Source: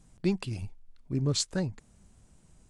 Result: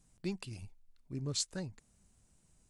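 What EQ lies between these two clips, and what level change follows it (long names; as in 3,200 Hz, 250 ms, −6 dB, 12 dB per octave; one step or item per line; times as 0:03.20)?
first-order pre-emphasis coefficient 0.8
high-shelf EQ 4,500 Hz −9 dB
notch filter 3,300 Hz, Q 28
+3.5 dB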